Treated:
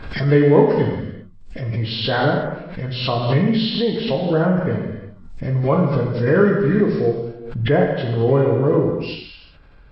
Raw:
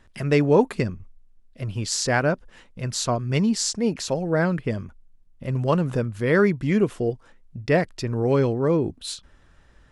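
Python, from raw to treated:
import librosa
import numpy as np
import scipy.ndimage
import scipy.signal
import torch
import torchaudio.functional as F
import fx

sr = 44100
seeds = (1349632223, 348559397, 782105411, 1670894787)

y = fx.freq_compress(x, sr, knee_hz=1300.0, ratio=1.5)
y = fx.dynamic_eq(y, sr, hz=3900.0, q=0.78, threshold_db=-39.0, ratio=4.0, max_db=-4)
y = fx.rev_gated(y, sr, seeds[0], gate_ms=420, shape='falling', drr_db=-1.0)
y = fx.pre_swell(y, sr, db_per_s=69.0)
y = y * 10.0 ** (1.0 / 20.0)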